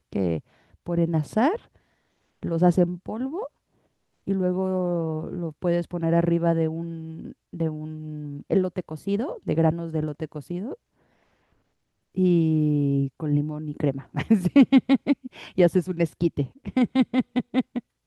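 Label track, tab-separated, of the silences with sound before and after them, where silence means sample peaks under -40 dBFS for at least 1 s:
10.750000	12.170000	silence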